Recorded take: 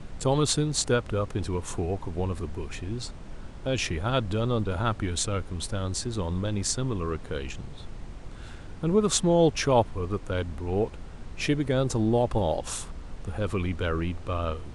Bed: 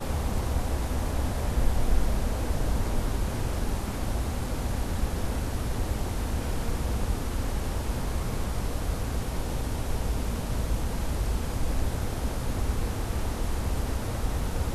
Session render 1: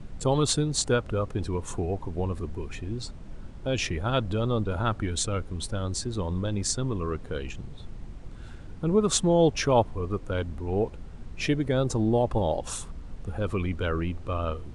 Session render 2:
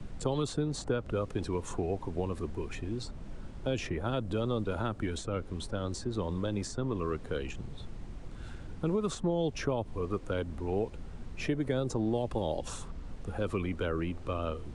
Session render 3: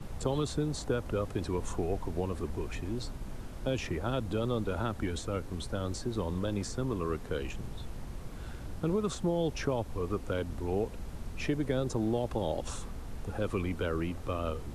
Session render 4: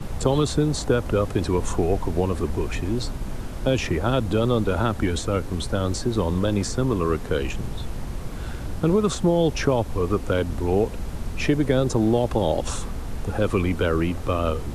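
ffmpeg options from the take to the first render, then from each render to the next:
-af "afftdn=nr=6:nf=-42"
-filter_complex "[0:a]alimiter=limit=-15.5dB:level=0:latency=1:release=145,acrossover=split=200|520|1700|7800[a][b][c][d][e];[a]acompressor=threshold=-37dB:ratio=4[f];[b]acompressor=threshold=-31dB:ratio=4[g];[c]acompressor=threshold=-39dB:ratio=4[h];[d]acompressor=threshold=-45dB:ratio=4[i];[e]acompressor=threshold=-58dB:ratio=4[j];[f][g][h][i][j]amix=inputs=5:normalize=0"
-filter_complex "[1:a]volume=-17dB[a];[0:a][a]amix=inputs=2:normalize=0"
-af "volume=10.5dB"

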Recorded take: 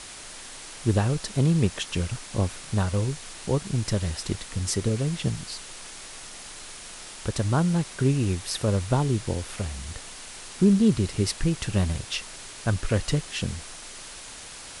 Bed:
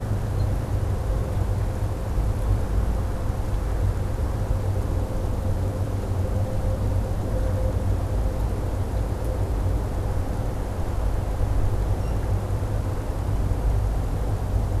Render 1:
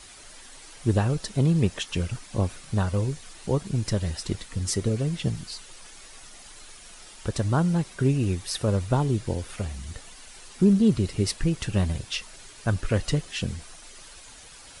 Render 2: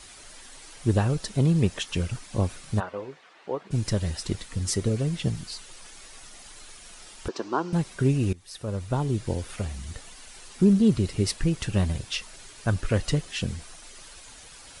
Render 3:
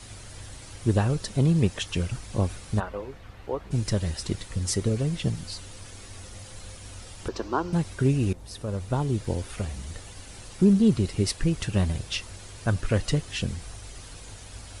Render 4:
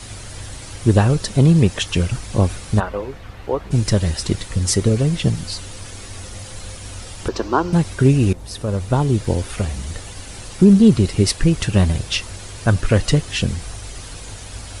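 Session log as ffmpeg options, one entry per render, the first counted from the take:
-af "afftdn=nr=9:nf=-42"
-filter_complex "[0:a]asplit=3[a][b][c];[a]afade=t=out:st=2.79:d=0.02[d];[b]highpass=450,lowpass=2.2k,afade=t=in:st=2.79:d=0.02,afade=t=out:st=3.7:d=0.02[e];[c]afade=t=in:st=3.7:d=0.02[f];[d][e][f]amix=inputs=3:normalize=0,asettb=1/sr,asplit=3[g][h][i];[g]atrim=end=7.284[j];[h]atrim=start=7.28:end=7.73,asetpts=PTS-STARTPTS,afade=t=in:d=0.004:c=qsin,afade=t=out:st=0.446:d=0.004:c=qsin,highpass=f=280:w=0.5412,highpass=f=280:w=1.3066,equalizer=f=370:t=q:w=4:g=6,equalizer=f=580:t=q:w=4:g=-7,equalizer=f=1k:t=q:w=4:g=6,equalizer=f=2k:t=q:w=4:g=-7,equalizer=f=3.6k:t=q:w=4:g=-6,lowpass=f=5.6k:w=0.5412,lowpass=f=5.6k:w=1.3066[k];[i]atrim=start=7.726[l];[j][k]acrossfade=d=0.004:c1=hsin:c2=qsin[m];[m][l]acrossfade=d=0.004:c1=qsin:c2=hsin,asplit=2[n][o];[n]atrim=end=8.33,asetpts=PTS-STARTPTS,afade=t=out:st=8.326:d=0.004:c=hsin:silence=0.0944061[p];[o]atrim=start=8.33,asetpts=PTS-STARTPTS,afade=t=in:d=0.99:silence=0.0944061[q];[p][q]concat=n=2:v=0:a=1"
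-filter_complex "[1:a]volume=-20.5dB[a];[0:a][a]amix=inputs=2:normalize=0"
-af "volume=9dB,alimiter=limit=-2dB:level=0:latency=1"

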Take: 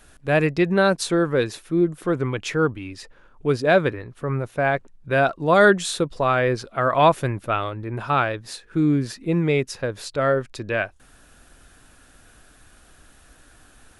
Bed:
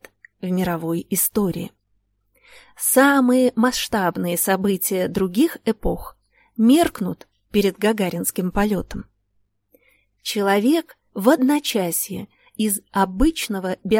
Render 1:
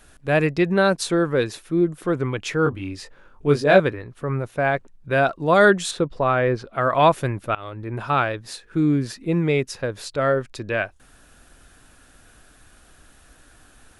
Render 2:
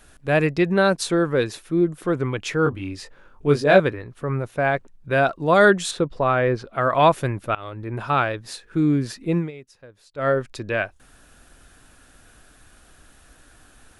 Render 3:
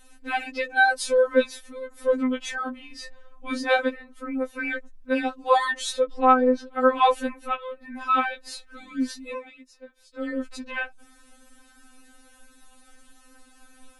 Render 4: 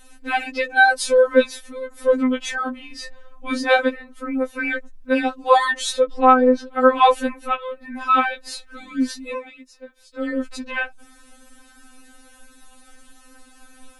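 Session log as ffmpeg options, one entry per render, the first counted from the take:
-filter_complex "[0:a]asettb=1/sr,asplit=3[a][b][c];[a]atrim=end=2.644[d];[b]atrim=start=2.64:end=3.8,asetpts=PTS-STARTPTS,afade=t=in:d=0.004:c=qsin,afade=t=out:st=1.156:d=0.004:c=qsin,asplit=2[e][f];[f]adelay=21,volume=-3dB[g];[e][g]amix=inputs=2:normalize=0,atrim=end_sample=51156[h];[c]atrim=start=3.796[i];[d][h]acrossfade=d=0.004:c1=hsin:c2=qsin[j];[j][i]acrossfade=d=0.004:c1=qsin:c2=hsin,asettb=1/sr,asplit=3[k][l][m];[k]atrim=end=5.914[n];[l]atrim=start=5.91:end=6.73,asetpts=PTS-STARTPTS,afade=t=in:d=0.004:c=qsin,afade=t=out:st=0.816:d=0.004:c=qsin,aemphasis=mode=reproduction:type=75fm[o];[m]atrim=start=6.726[p];[n][o]acrossfade=d=0.004:c1=hsin:c2=qsin[q];[q][p]acrossfade=d=0.004:c1=qsin:c2=hsin,asplit=2[r][s];[r]atrim=end=7.55,asetpts=PTS-STARTPTS,afade=t=out:st=7.546:d=0.004:c=hsin:silence=0.0794328[t];[s]atrim=start=7.55,asetpts=PTS-STARTPTS,afade=t=in:d=0.4:c=qsin:silence=0.0794328[u];[t][u]concat=n=2:v=0:a=1"
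-filter_complex "[0:a]asplit=3[a][b][c];[a]atrim=end=9.51,asetpts=PTS-STARTPTS,afade=t=out:st=9.37:d=0.14:silence=0.105925[d];[b]atrim=start=9.51:end=10.14,asetpts=PTS-STARTPTS,volume=-19.5dB[e];[c]atrim=start=10.14,asetpts=PTS-STARTPTS,afade=t=in:d=0.14:silence=0.105925[f];[d][e][f]concat=n=3:v=0:a=1"
-af "afftfilt=real='re*3.46*eq(mod(b,12),0)':imag='im*3.46*eq(mod(b,12),0)':win_size=2048:overlap=0.75"
-af "volume=5dB,alimiter=limit=-1dB:level=0:latency=1"

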